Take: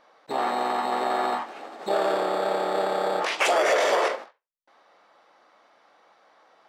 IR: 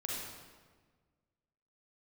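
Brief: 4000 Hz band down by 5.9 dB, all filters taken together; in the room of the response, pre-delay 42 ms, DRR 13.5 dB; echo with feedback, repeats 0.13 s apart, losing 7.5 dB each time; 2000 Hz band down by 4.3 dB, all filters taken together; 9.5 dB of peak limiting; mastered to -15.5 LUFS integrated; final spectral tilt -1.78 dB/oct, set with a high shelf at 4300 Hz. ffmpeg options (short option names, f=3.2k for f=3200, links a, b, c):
-filter_complex "[0:a]equalizer=f=2k:t=o:g=-3.5,equalizer=f=4k:t=o:g=-4,highshelf=f=4.3k:g=-4.5,alimiter=limit=-22dB:level=0:latency=1,aecho=1:1:130|260|390|520|650:0.422|0.177|0.0744|0.0312|0.0131,asplit=2[a][b];[1:a]atrim=start_sample=2205,adelay=42[c];[b][c]afir=irnorm=-1:irlink=0,volume=-15.5dB[d];[a][d]amix=inputs=2:normalize=0,volume=14.5dB"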